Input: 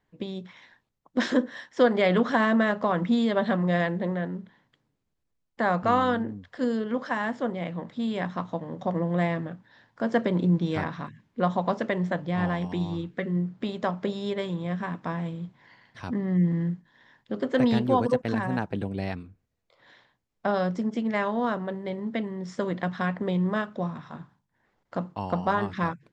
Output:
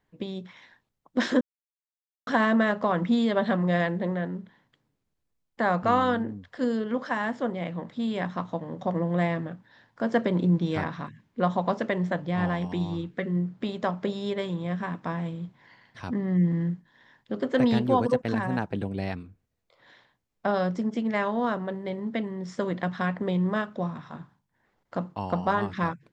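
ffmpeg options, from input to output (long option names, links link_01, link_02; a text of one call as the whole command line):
ffmpeg -i in.wav -filter_complex "[0:a]asplit=3[link_01][link_02][link_03];[link_01]atrim=end=1.41,asetpts=PTS-STARTPTS,afade=type=out:start_time=1.406:duration=0.004:curve=hsin[link_04];[link_02]atrim=start=1.41:end=2.27,asetpts=PTS-STARTPTS,volume=0[link_05];[link_03]atrim=start=2.27,asetpts=PTS-STARTPTS,afade=type=in:duration=0.004:curve=hsin[link_06];[link_04][link_05][link_06]concat=n=3:v=0:a=1" out.wav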